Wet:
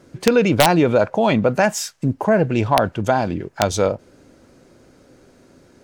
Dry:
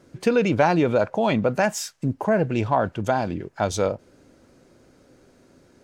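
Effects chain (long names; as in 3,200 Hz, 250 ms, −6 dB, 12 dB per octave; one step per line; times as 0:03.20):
wrap-around overflow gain 8 dB
level +4.5 dB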